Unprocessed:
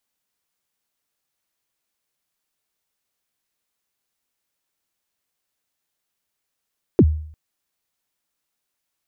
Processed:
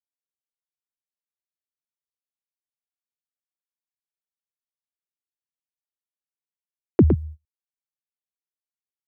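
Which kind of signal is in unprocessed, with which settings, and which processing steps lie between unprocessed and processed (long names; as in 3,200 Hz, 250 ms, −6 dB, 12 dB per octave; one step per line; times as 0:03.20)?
synth kick length 0.35 s, from 450 Hz, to 77 Hz, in 53 ms, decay 0.58 s, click off, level −6 dB
noise gate −28 dBFS, range −29 dB
single-tap delay 111 ms −6 dB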